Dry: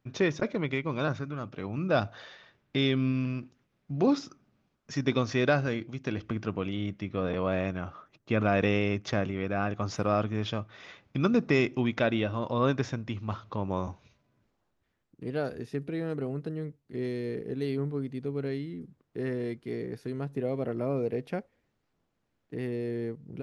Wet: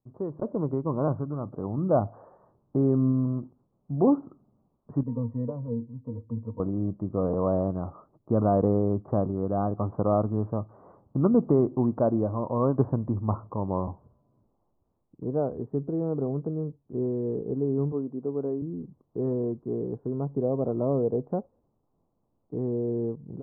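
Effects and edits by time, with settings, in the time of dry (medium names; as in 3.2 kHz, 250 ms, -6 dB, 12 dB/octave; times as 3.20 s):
5.03–6.60 s: pitch-class resonator A#, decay 0.12 s
12.78–13.47 s: gain +5.5 dB
17.92–18.62 s: high-pass 220 Hz
whole clip: steep low-pass 1.1 kHz 48 dB/octave; level rider gain up to 12 dB; trim -7.5 dB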